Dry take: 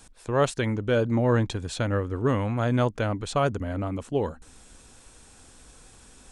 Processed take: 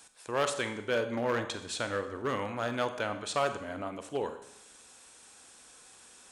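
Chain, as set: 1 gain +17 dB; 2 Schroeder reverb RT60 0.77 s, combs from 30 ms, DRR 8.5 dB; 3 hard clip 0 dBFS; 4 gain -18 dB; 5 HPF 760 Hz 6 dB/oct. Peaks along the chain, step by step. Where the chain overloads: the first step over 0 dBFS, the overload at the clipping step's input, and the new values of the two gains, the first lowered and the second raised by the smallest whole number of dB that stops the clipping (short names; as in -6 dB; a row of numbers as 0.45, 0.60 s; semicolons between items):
+6.0, +6.5, 0.0, -18.0, -14.5 dBFS; step 1, 6.5 dB; step 1 +10 dB, step 4 -11 dB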